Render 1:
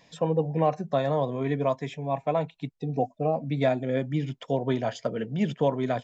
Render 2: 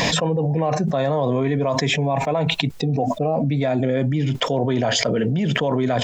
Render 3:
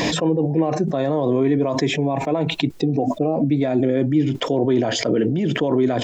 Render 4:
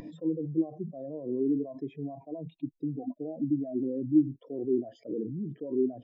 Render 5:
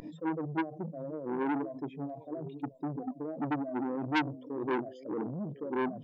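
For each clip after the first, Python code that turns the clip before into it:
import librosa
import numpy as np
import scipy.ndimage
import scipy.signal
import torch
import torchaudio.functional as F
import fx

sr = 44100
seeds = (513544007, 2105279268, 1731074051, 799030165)

y1 = fx.env_flatten(x, sr, amount_pct=100)
y2 = fx.peak_eq(y1, sr, hz=330.0, db=13.5, octaves=0.65)
y2 = F.gain(torch.from_numpy(y2), -3.5).numpy()
y3 = fx.spectral_expand(y2, sr, expansion=2.5)
y3 = F.gain(torch.from_numpy(y3), -6.0).numpy()
y4 = fx.echo_stepped(y3, sr, ms=524, hz=170.0, octaves=1.4, feedback_pct=70, wet_db=-11.5)
y4 = fx.transformer_sat(y4, sr, knee_hz=1700.0)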